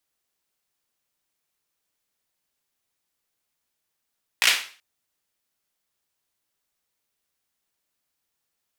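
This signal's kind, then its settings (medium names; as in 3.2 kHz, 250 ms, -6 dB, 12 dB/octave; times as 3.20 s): hand clap length 0.38 s, apart 17 ms, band 2.5 kHz, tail 0.40 s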